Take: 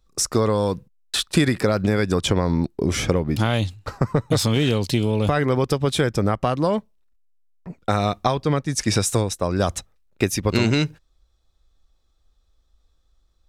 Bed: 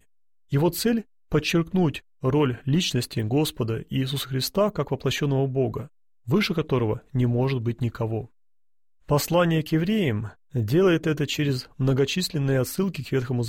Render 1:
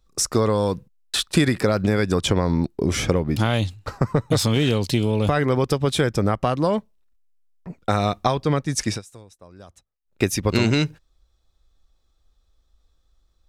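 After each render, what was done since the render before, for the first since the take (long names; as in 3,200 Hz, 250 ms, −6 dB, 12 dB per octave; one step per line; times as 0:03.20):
0:08.83–0:10.22: duck −23.5 dB, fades 0.19 s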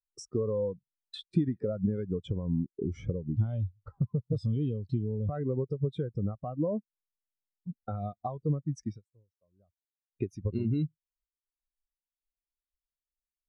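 downward compressor 3 to 1, threshold −30 dBFS, peak gain reduction 13 dB
every bin expanded away from the loudest bin 2.5 to 1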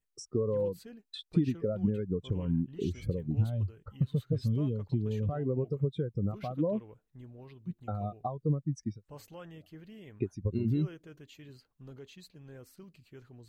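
mix in bed −27 dB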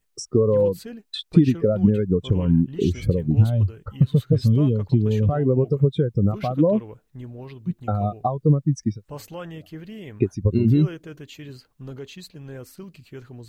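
level +12 dB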